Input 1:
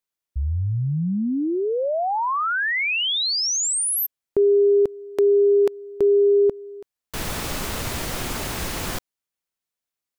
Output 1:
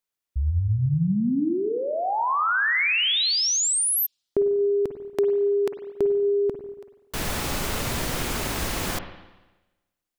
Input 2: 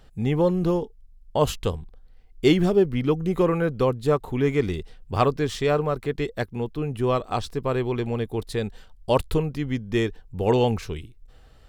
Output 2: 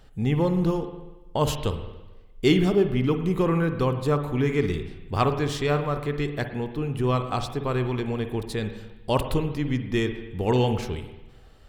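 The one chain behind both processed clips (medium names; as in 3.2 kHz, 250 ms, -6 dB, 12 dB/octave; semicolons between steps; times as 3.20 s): dynamic bell 550 Hz, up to -5 dB, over -32 dBFS, Q 1.3; spring tank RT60 1.1 s, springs 48/55 ms, chirp 65 ms, DRR 7.5 dB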